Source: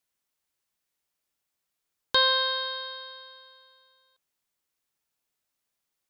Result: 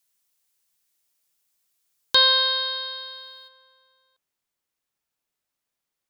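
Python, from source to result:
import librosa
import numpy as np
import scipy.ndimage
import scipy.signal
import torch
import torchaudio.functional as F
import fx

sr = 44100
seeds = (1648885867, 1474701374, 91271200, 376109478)

y = fx.high_shelf(x, sr, hz=3300.0, db=fx.steps((0.0, 11.5), (3.47, -2.5)))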